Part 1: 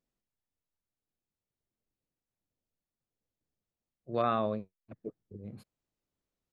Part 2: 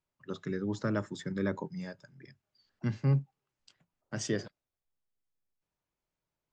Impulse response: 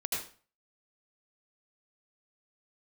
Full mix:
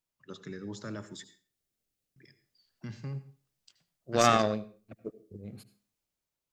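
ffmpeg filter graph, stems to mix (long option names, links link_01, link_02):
-filter_complex "[0:a]dynaudnorm=framelen=160:gausssize=9:maxgain=12.5dB,bandreject=frequency=990:width=6.4,volume=-4.5dB,asplit=2[link_01][link_02];[link_02]volume=-16.5dB[link_03];[1:a]alimiter=level_in=1.5dB:limit=-24dB:level=0:latency=1:release=20,volume=-1.5dB,volume=0.5dB,asplit=3[link_04][link_05][link_06];[link_04]atrim=end=1.24,asetpts=PTS-STARTPTS,afade=type=out:start_time=1.236:duration=0.004:curve=hsin[link_07];[link_05]atrim=start=1.24:end=2.16,asetpts=PTS-STARTPTS,volume=0[link_08];[link_06]atrim=start=2.16,asetpts=PTS-STARTPTS,afade=type=in:duration=0.004:curve=hsin[link_09];[link_07][link_08][link_09]concat=n=3:v=0:a=1,asplit=2[link_10][link_11];[link_11]volume=-14dB[link_12];[2:a]atrim=start_sample=2205[link_13];[link_03][link_12]amix=inputs=2:normalize=0[link_14];[link_14][link_13]afir=irnorm=-1:irlink=0[link_15];[link_01][link_10][link_15]amix=inputs=3:normalize=0,highshelf=frequency=2500:gain=9.5,aeval=exprs='0.501*(cos(1*acos(clip(val(0)/0.501,-1,1)))-cos(1*PI/2))+0.0794*(cos(3*acos(clip(val(0)/0.501,-1,1)))-cos(3*PI/2))+0.0112*(cos(7*acos(clip(val(0)/0.501,-1,1)))-cos(7*PI/2))':channel_layout=same"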